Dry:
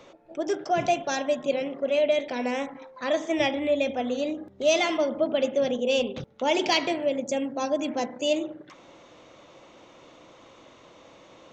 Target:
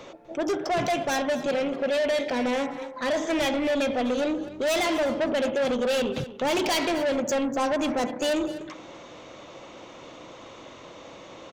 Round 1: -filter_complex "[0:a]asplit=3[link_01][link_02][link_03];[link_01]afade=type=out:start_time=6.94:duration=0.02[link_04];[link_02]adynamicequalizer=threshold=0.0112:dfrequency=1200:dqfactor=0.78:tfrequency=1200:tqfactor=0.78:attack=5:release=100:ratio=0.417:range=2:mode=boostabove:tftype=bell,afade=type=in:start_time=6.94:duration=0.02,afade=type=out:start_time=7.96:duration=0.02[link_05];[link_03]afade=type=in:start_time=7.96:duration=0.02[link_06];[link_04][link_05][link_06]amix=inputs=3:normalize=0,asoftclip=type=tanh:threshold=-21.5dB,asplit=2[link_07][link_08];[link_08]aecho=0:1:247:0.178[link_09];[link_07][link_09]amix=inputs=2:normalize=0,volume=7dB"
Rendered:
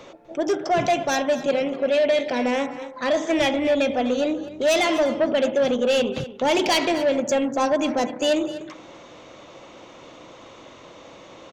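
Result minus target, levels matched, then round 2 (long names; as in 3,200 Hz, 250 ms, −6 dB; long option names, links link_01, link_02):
soft clipping: distortion −6 dB
-filter_complex "[0:a]asplit=3[link_01][link_02][link_03];[link_01]afade=type=out:start_time=6.94:duration=0.02[link_04];[link_02]adynamicequalizer=threshold=0.0112:dfrequency=1200:dqfactor=0.78:tfrequency=1200:tqfactor=0.78:attack=5:release=100:ratio=0.417:range=2:mode=boostabove:tftype=bell,afade=type=in:start_time=6.94:duration=0.02,afade=type=out:start_time=7.96:duration=0.02[link_05];[link_03]afade=type=in:start_time=7.96:duration=0.02[link_06];[link_04][link_05][link_06]amix=inputs=3:normalize=0,asoftclip=type=tanh:threshold=-29dB,asplit=2[link_07][link_08];[link_08]aecho=0:1:247:0.178[link_09];[link_07][link_09]amix=inputs=2:normalize=0,volume=7dB"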